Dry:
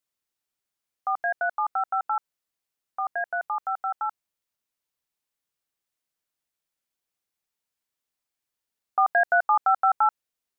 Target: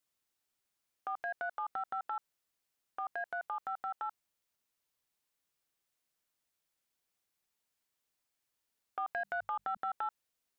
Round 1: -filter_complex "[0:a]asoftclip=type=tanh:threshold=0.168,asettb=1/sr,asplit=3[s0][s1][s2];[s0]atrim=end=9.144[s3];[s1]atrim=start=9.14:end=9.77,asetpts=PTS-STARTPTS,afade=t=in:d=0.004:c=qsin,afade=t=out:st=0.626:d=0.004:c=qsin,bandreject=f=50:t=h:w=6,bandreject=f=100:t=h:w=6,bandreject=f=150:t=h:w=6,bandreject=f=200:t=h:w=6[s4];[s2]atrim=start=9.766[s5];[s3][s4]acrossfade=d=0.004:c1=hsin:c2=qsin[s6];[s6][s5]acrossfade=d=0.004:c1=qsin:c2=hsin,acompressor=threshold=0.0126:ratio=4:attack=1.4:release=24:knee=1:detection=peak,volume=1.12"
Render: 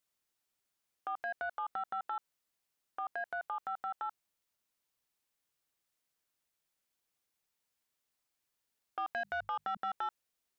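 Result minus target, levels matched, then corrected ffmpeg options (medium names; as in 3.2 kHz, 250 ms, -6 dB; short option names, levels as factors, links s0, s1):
saturation: distortion +14 dB
-filter_complex "[0:a]asoftclip=type=tanh:threshold=0.447,asettb=1/sr,asplit=3[s0][s1][s2];[s0]atrim=end=9.144[s3];[s1]atrim=start=9.14:end=9.77,asetpts=PTS-STARTPTS,afade=t=in:d=0.004:c=qsin,afade=t=out:st=0.626:d=0.004:c=qsin,bandreject=f=50:t=h:w=6,bandreject=f=100:t=h:w=6,bandreject=f=150:t=h:w=6,bandreject=f=200:t=h:w=6[s4];[s2]atrim=start=9.766[s5];[s3][s4]acrossfade=d=0.004:c1=hsin:c2=qsin[s6];[s6][s5]acrossfade=d=0.004:c1=qsin:c2=hsin,acompressor=threshold=0.0126:ratio=4:attack=1.4:release=24:knee=1:detection=peak,volume=1.12"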